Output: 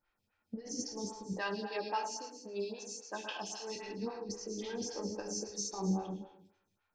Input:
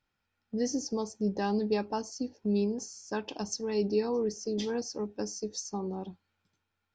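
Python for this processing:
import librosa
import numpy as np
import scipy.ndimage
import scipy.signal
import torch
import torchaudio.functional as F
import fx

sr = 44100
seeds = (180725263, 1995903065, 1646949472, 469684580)

y = fx.highpass(x, sr, hz=1100.0, slope=6, at=(1.33, 3.76))
y = fx.dynamic_eq(y, sr, hz=2800.0, q=0.92, threshold_db=-52.0, ratio=4.0, max_db=5)
y = fx.over_compress(y, sr, threshold_db=-34.0, ratio=-0.5)
y = fx.echo_feedback(y, sr, ms=110, feedback_pct=34, wet_db=-9.5)
y = fx.rev_gated(y, sr, seeds[0], gate_ms=340, shape='falling', drr_db=0.5)
y = fx.stagger_phaser(y, sr, hz=3.7)
y = y * 10.0 ** (-2.5 / 20.0)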